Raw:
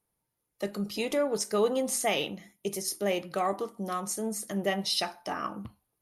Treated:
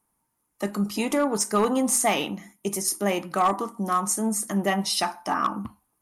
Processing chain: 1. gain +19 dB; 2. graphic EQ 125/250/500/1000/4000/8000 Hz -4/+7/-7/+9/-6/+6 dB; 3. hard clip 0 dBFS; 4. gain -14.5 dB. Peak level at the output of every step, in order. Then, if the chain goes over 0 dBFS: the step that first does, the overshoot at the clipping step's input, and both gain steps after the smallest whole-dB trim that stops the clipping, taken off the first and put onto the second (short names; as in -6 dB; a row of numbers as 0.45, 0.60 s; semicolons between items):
+4.0, +5.5, 0.0, -14.5 dBFS; step 1, 5.5 dB; step 1 +13 dB, step 4 -8.5 dB